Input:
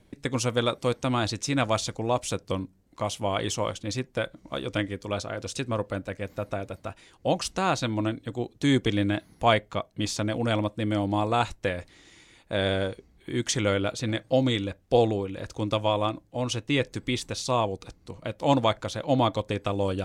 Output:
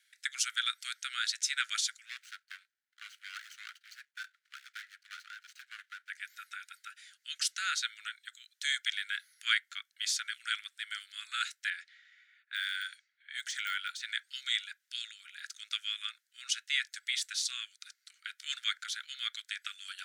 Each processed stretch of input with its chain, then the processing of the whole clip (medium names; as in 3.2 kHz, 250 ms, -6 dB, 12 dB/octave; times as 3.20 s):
2.05–6.10 s: median filter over 25 samples + treble shelf 6.6 kHz -8.5 dB
11.70–14.10 s: level-controlled noise filter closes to 1.4 kHz, open at -26 dBFS + de-esser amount 95%
whole clip: steep high-pass 1.4 kHz 96 dB/octave; peaking EQ 2.6 kHz -5.5 dB 0.3 oct; trim +1 dB